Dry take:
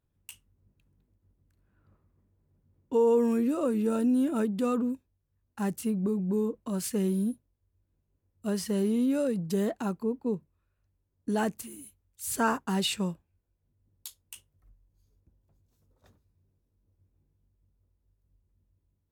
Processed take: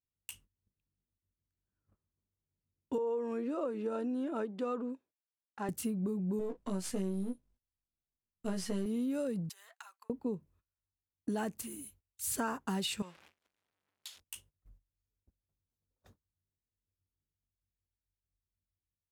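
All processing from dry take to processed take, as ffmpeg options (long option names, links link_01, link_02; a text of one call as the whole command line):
ffmpeg -i in.wav -filter_complex "[0:a]asettb=1/sr,asplit=3[link_01][link_02][link_03];[link_01]atrim=end=2.984[link_04];[link_02]atrim=start=2.98:end=5.69,asetpts=PTS-STARTPTS,afade=type=in:duration=0.004:curve=qsin,afade=type=out:start_time=2.706:duration=0.004:curve=qsin,highpass=390,lowpass=3900,equalizer=frequency=2800:width_type=o:width=1.8:gain=-4.5[link_05];[link_03]atrim=start=5.686[link_06];[link_04][link_05]acrossfade=duration=0.004:curve1=hsin:curve2=qsin[link_07];[link_07][link_06]acrossfade=duration=0.004:curve1=qsin:curve2=hsin,asettb=1/sr,asplit=3[link_08][link_09][link_10];[link_08]atrim=end=6.394[link_11];[link_09]atrim=start=6.39:end=8.86,asetpts=PTS-STARTPTS,afade=type=in:duration=0.004:curve=qsin,afade=type=out:start_time=2.466:duration=0.004:curve=qsin,aeval=exprs='if(lt(val(0),0),0.447*val(0),val(0))':channel_layout=same,lowpass=10000,asplit=2[link_12][link_13];[link_13]adelay=16,volume=-3dB[link_14];[link_12][link_14]amix=inputs=2:normalize=0,atrim=end_sample=108927[link_15];[link_10]atrim=start=8.856[link_16];[link_11][link_15]acrossfade=duration=0.004:curve1=hsin:curve2=qsin[link_17];[link_17][link_16]acrossfade=duration=0.004:curve1=qsin:curve2=hsin,asettb=1/sr,asplit=3[link_18][link_19][link_20];[link_18]atrim=end=9.494[link_21];[link_19]atrim=start=9.49:end=10.1,asetpts=PTS-STARTPTS,afade=type=in:duration=0.004:curve=qsin,afade=type=out:start_time=0.606:duration=0.004:curve=qsin,acompressor=threshold=-39dB:ratio=6:attack=3.2:release=140:knee=1:detection=peak,highpass=frequency=1100:width=0.5412,highpass=frequency=1100:width=1.3066[link_22];[link_20]atrim=start=10.096[link_23];[link_21][link_22]acrossfade=duration=0.004:curve1=hsin:curve2=qsin[link_24];[link_24][link_23]acrossfade=duration=0.004:curve1=qsin:curve2=hsin,asettb=1/sr,asplit=3[link_25][link_26][link_27];[link_25]atrim=end=13.024[link_28];[link_26]atrim=start=13.02:end=14.2,asetpts=PTS-STARTPTS,afade=type=in:duration=0.004:curve=qsin,afade=type=out:start_time=1.176:duration=0.004:curve=qsin,aeval=exprs='val(0)+0.5*0.00631*sgn(val(0))':channel_layout=same,bandpass=frequency=2500:width_type=q:width=0.81[link_29];[link_27]atrim=start=14.196[link_30];[link_28][link_29]acrossfade=duration=0.004:curve1=hsin:curve2=qsin[link_31];[link_31][link_30]acrossfade=duration=0.004:curve1=qsin:curve2=hsin,agate=range=-21dB:threshold=-60dB:ratio=16:detection=peak,acompressor=threshold=-32dB:ratio=6" out.wav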